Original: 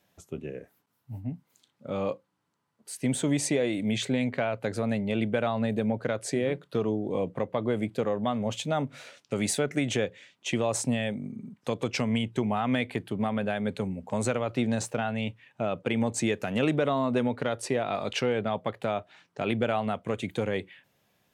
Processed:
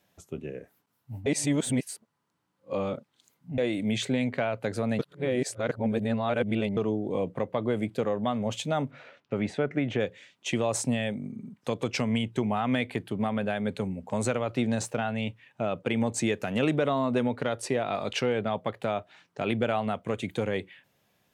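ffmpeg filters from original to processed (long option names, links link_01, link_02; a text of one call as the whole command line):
ffmpeg -i in.wav -filter_complex "[0:a]asplit=3[link_01][link_02][link_03];[link_01]afade=type=out:start_time=8.9:duration=0.02[link_04];[link_02]lowpass=2200,afade=type=in:start_time=8.9:duration=0.02,afade=type=out:start_time=9.99:duration=0.02[link_05];[link_03]afade=type=in:start_time=9.99:duration=0.02[link_06];[link_04][link_05][link_06]amix=inputs=3:normalize=0,asplit=5[link_07][link_08][link_09][link_10][link_11];[link_07]atrim=end=1.262[link_12];[link_08]atrim=start=1.258:end=3.582,asetpts=PTS-STARTPTS,areverse[link_13];[link_09]atrim=start=3.578:end=4.992[link_14];[link_10]atrim=start=4.988:end=6.772,asetpts=PTS-STARTPTS,areverse[link_15];[link_11]atrim=start=6.768[link_16];[link_12][link_13]acrossfade=duration=0.004:curve1=hsin:curve2=hsin[link_17];[link_17][link_14]acrossfade=duration=0.004:curve1=hsin:curve2=hsin[link_18];[link_18][link_15]acrossfade=duration=0.004:curve1=hsin:curve2=hsin[link_19];[link_19][link_16]acrossfade=duration=0.004:curve1=hsin:curve2=hsin" out.wav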